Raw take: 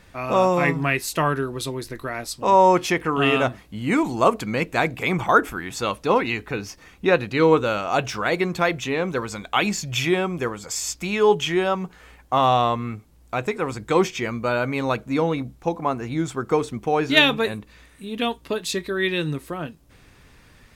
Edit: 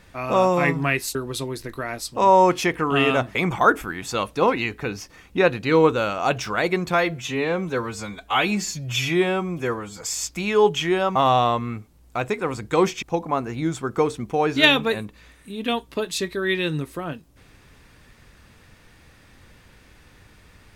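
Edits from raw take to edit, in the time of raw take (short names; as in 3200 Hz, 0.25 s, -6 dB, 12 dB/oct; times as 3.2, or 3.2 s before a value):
1.15–1.41 cut
3.61–5.03 cut
8.62–10.67 stretch 1.5×
11.81–12.33 cut
14.2–15.56 cut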